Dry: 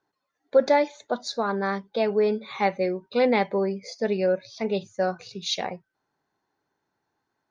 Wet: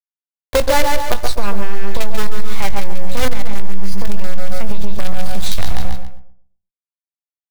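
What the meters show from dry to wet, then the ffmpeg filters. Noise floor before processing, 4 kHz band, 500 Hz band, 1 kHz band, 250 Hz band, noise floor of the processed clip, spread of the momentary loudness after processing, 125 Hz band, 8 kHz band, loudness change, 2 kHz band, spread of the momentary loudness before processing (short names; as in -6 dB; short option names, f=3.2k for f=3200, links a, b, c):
-80 dBFS, +6.5 dB, -1.0 dB, +4.0 dB, +1.0 dB, under -85 dBFS, 13 LU, +13.5 dB, n/a, +2.0 dB, +6.0 dB, 8 LU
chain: -filter_complex "[0:a]acrusher=bits=4:dc=4:mix=0:aa=0.000001,asplit=2[a][b];[b]adelay=125,lowpass=f=850:p=1,volume=-7dB,asplit=2[c][d];[d]adelay=125,lowpass=f=850:p=1,volume=0.29,asplit=2[e][f];[f]adelay=125,lowpass=f=850:p=1,volume=0.29,asplit=2[g][h];[h]adelay=125,lowpass=f=850:p=1,volume=0.29[i];[c][e][g][i]amix=inputs=4:normalize=0[j];[a][j]amix=inputs=2:normalize=0,asubboost=boost=10:cutoff=100,asplit=2[k][l];[l]aecho=0:1:140|280|420:0.398|0.107|0.029[m];[k][m]amix=inputs=2:normalize=0,acrossover=split=150[n][o];[o]acompressor=threshold=-30dB:ratio=2[p];[n][p]amix=inputs=2:normalize=0,asplit=2[q][r];[r]adelay=20,volume=-12dB[s];[q][s]amix=inputs=2:normalize=0,acontrast=42,equalizer=f=440:w=1.5:g=-2.5,alimiter=level_in=9.5dB:limit=-1dB:release=50:level=0:latency=1,volume=-1dB"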